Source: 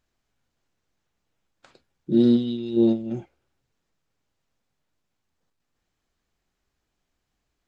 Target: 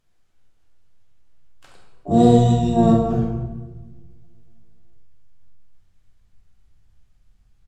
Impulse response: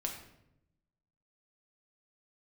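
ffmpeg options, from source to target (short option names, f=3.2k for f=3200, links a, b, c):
-filter_complex "[0:a]asplit=4[a][b][c][d];[b]asetrate=22050,aresample=44100,atempo=2,volume=-15dB[e];[c]asetrate=29433,aresample=44100,atempo=1.49831,volume=-17dB[f];[d]asetrate=88200,aresample=44100,atempo=0.5,volume=-3dB[g];[a][e][f][g]amix=inputs=4:normalize=0,asubboost=boost=5.5:cutoff=150[h];[1:a]atrim=start_sample=2205,asetrate=24696,aresample=44100[i];[h][i]afir=irnorm=-1:irlink=0,volume=-1dB"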